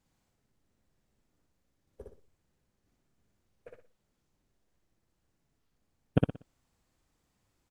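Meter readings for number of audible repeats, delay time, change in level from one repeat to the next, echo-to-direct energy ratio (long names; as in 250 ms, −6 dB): 4, 60 ms, −10.5 dB, −2.5 dB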